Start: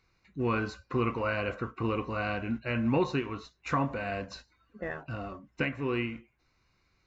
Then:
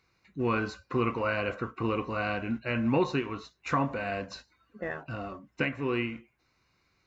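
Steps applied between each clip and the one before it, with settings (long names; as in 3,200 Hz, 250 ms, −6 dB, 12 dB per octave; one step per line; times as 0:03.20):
high-pass filter 100 Hz 6 dB per octave
level +1.5 dB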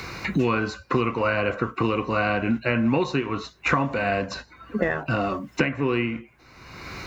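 multiband upward and downward compressor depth 100%
level +6 dB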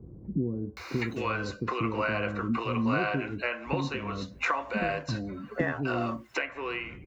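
multiband delay without the direct sound lows, highs 770 ms, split 410 Hz
level −5 dB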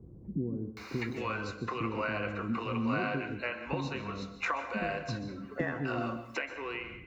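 dense smooth reverb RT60 0.53 s, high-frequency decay 0.95×, pre-delay 115 ms, DRR 10 dB
level −4.5 dB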